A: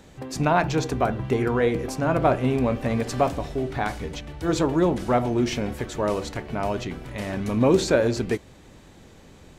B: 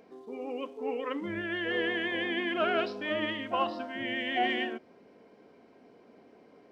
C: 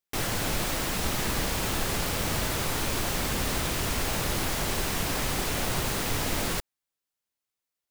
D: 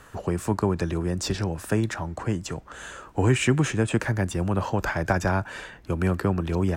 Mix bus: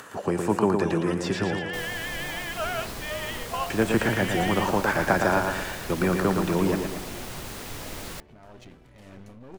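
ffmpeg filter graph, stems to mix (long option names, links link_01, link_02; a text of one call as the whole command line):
ffmpeg -i stem1.wav -i stem2.wav -i stem3.wav -i stem4.wav -filter_complex "[0:a]acompressor=threshold=-39dB:ratio=2,tremolo=f=1.9:d=0.54,aeval=exprs='clip(val(0),-1,0.00501)':channel_layout=same,adelay=1800,volume=-6dB[link_01];[1:a]highpass=frequency=550:width=0.5412,highpass=frequency=550:width=1.3066,volume=-0.5dB[link_02];[2:a]adelay=1600,volume=-8.5dB[link_03];[3:a]acrossover=split=3200[link_04][link_05];[link_05]acompressor=threshold=-41dB:ratio=4:attack=1:release=60[link_06];[link_04][link_06]amix=inputs=2:normalize=0,highpass=190,acompressor=mode=upward:threshold=-43dB:ratio=2.5,volume=2.5dB,asplit=3[link_07][link_08][link_09];[link_07]atrim=end=1.59,asetpts=PTS-STARTPTS,afade=type=out:start_time=1.586:duration=0.004:curve=hsin[link_10];[link_08]atrim=start=1.59:end=3.7,asetpts=PTS-STARTPTS,volume=0[link_11];[link_09]atrim=start=3.7,asetpts=PTS-STARTPTS,afade=type=in:duration=0.004:curve=hsin[link_12];[link_10][link_11][link_12]concat=n=3:v=0:a=1,asplit=2[link_13][link_14];[link_14]volume=-5dB,aecho=0:1:114|228|342|456|570|684|798:1|0.48|0.23|0.111|0.0531|0.0255|0.0122[link_15];[link_01][link_02][link_03][link_13][link_15]amix=inputs=5:normalize=0" out.wav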